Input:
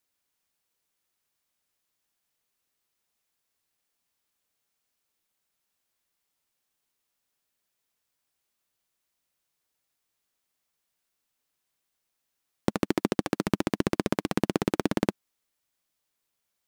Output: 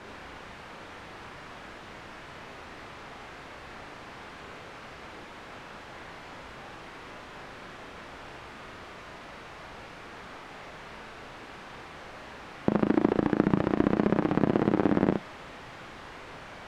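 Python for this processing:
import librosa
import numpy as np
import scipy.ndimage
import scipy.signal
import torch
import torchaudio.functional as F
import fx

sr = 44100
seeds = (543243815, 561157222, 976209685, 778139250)

y = x + 0.5 * 10.0 ** (-29.5 / 20.0) * np.sign(x)
y = scipy.signal.sosfilt(scipy.signal.butter(2, 1700.0, 'lowpass', fs=sr, output='sos'), y)
y = fx.room_early_taps(y, sr, ms=(37, 69), db=(-5.0, -4.5))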